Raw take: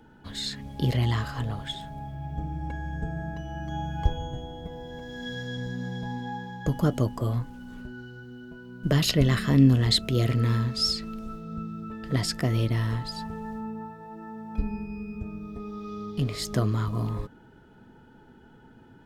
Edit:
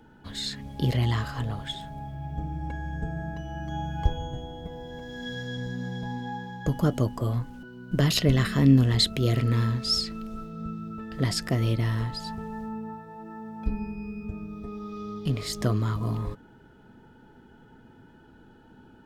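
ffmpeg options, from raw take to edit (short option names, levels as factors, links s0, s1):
-filter_complex "[0:a]asplit=2[s0][s1];[s0]atrim=end=7.632[s2];[s1]atrim=start=8.548[s3];[s2][s3]acrossfade=d=0.004:c1=hsin:c2=hsin"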